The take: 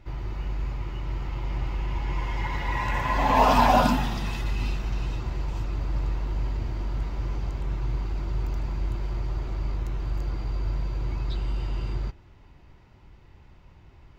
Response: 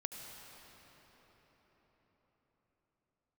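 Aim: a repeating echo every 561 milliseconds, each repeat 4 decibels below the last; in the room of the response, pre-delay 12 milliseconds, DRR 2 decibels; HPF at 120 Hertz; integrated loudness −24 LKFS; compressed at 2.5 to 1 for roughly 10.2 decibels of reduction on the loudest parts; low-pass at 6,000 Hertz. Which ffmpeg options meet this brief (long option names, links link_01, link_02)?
-filter_complex "[0:a]highpass=120,lowpass=6000,acompressor=threshold=-31dB:ratio=2.5,aecho=1:1:561|1122|1683|2244|2805|3366|3927|4488|5049:0.631|0.398|0.25|0.158|0.0994|0.0626|0.0394|0.0249|0.0157,asplit=2[link_01][link_02];[1:a]atrim=start_sample=2205,adelay=12[link_03];[link_02][link_03]afir=irnorm=-1:irlink=0,volume=-1dB[link_04];[link_01][link_04]amix=inputs=2:normalize=0,volume=8.5dB"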